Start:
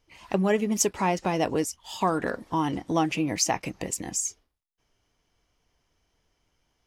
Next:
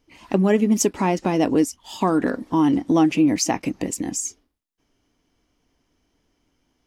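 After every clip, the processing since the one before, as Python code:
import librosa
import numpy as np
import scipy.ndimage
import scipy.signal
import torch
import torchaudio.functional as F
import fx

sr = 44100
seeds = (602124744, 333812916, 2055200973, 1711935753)

y = fx.peak_eq(x, sr, hz=270.0, db=12.0, octaves=0.81)
y = y * 10.0 ** (1.5 / 20.0)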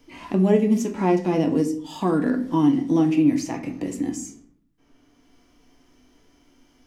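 y = fx.hpss(x, sr, part='percussive', gain_db=-12)
y = fx.room_shoebox(y, sr, seeds[0], volume_m3=50.0, walls='mixed', distance_m=0.34)
y = fx.band_squash(y, sr, depth_pct=40)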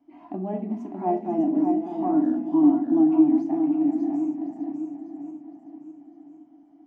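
y = fx.reverse_delay_fb(x, sr, ms=531, feedback_pct=54, wet_db=-9.0)
y = fx.double_bandpass(y, sr, hz=470.0, octaves=1.2)
y = y + 10.0 ** (-5.5 / 20.0) * np.pad(y, (int(602 * sr / 1000.0), 0))[:len(y)]
y = y * 10.0 ** (2.5 / 20.0)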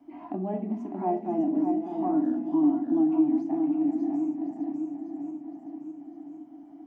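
y = fx.band_squash(x, sr, depth_pct=40)
y = y * 10.0 ** (-3.5 / 20.0)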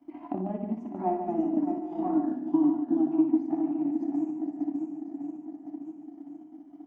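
y = fx.notch(x, sr, hz=410.0, q=12.0)
y = fx.transient(y, sr, attack_db=7, sustain_db=-7)
y = fx.echo_multitap(y, sr, ms=(59, 146), db=(-8.0, -8.0))
y = y * 10.0 ** (-4.0 / 20.0)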